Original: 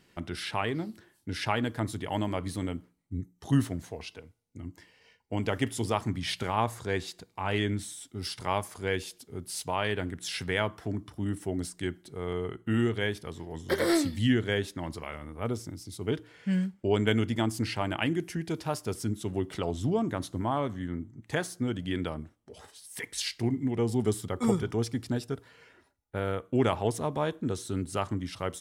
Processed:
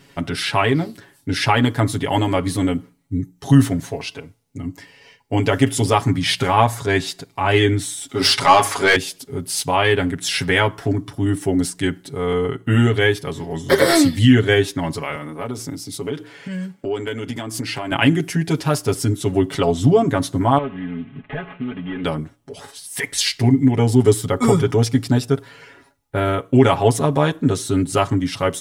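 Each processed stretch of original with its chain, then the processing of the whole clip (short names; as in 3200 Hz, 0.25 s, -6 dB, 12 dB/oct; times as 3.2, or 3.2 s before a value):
8.09–8.96 overdrive pedal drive 20 dB, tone 3600 Hz, clips at -14 dBFS + notches 50/100/150/200/250/300/350/400/450/500 Hz
15.15–17.92 HPF 150 Hz + compressor 5:1, threshold -35 dBFS
20.58–22.04 CVSD 16 kbps + comb 4.7 ms, depth 72% + compressor 2.5:1, threshold -42 dBFS
whole clip: comb 7.2 ms, depth 82%; maximiser +12 dB; gain -1 dB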